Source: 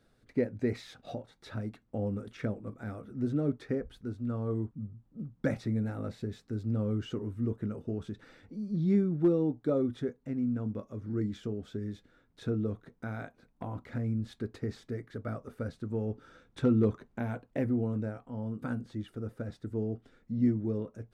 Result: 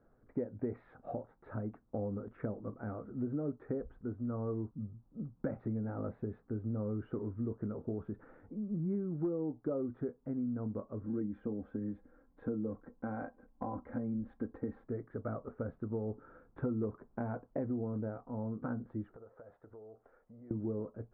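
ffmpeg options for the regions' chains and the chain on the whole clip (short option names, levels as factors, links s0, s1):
-filter_complex "[0:a]asettb=1/sr,asplit=3[s0][s1][s2];[s0]atrim=end=11.034[s3];[s1]atrim=start=11.03:end=14.84,asetpts=PTS-STARTPTS,afade=t=in:d=0.004:c=qsin,afade=t=out:st=3.806:d=0.004:c=qsin,bandreject=f=1300:w=13,aecho=1:1:3.8:0.61,atrim=end_sample=168021[s4];[s2]atrim=start=14.836[s5];[s3][s4]acrossfade=d=0.004:c1=hsin:c2=qsin[s6];[s6][s5]acrossfade=d=0.004:c1=qsin:c2=hsin,asettb=1/sr,asplit=3[s7][s8][s9];[s7]atrim=end=19.164[s10];[s8]atrim=start=19.16:end=20.51,asetpts=PTS-STARTPTS,afade=t=in:d=0.004:c=qsin,afade=t=out:st=1.346:d=0.004:c=qsin,lowshelf=f=380:t=q:w=1.5:g=-12,acompressor=threshold=0.00282:ratio=6:attack=3.2:release=140:knee=1:detection=peak[s11];[s9]atrim=start=20.506[s12];[s10][s11]acrossfade=d=0.004:c1=hsin:c2=qsin[s13];[s13][s12]acrossfade=d=0.004:c1=qsin:c2=hsin,lowpass=f=1300:w=0.5412,lowpass=f=1300:w=1.3066,equalizer=f=120:w=0.52:g=-5,acompressor=threshold=0.0158:ratio=4,volume=1.33"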